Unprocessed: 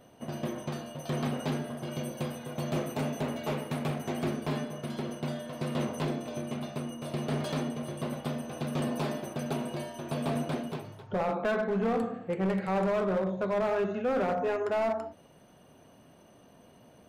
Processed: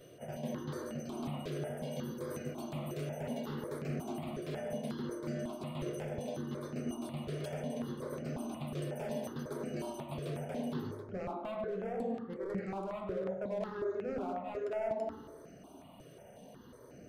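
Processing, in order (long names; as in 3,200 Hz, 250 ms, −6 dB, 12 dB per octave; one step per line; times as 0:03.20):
parametric band 420 Hz +4.5 dB 1.3 octaves
hum removal 57.29 Hz, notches 37
reversed playback
downward compressor 6 to 1, threshold −37 dBFS, peak gain reduction 14 dB
reversed playback
tape delay 101 ms, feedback 69%, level −3.5 dB, low-pass 1,100 Hz
step-sequenced phaser 5.5 Hz 230–3,500 Hz
level +2.5 dB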